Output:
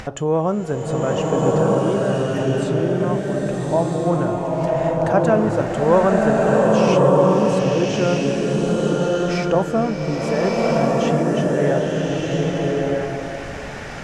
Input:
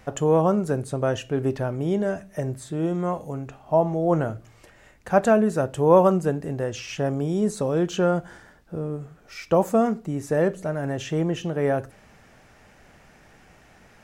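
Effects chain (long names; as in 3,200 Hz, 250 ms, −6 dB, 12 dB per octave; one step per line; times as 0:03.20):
low-pass filter 7,300 Hz 12 dB per octave
upward compression, threshold −22 dBFS
slow-attack reverb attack 1,300 ms, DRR −4 dB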